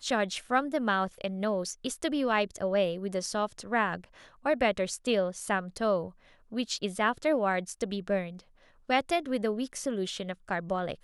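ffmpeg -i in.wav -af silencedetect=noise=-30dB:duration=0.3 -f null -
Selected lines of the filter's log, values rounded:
silence_start: 3.96
silence_end: 4.46 | silence_duration: 0.50
silence_start: 6.06
silence_end: 6.55 | silence_duration: 0.48
silence_start: 8.24
silence_end: 8.90 | silence_duration: 0.66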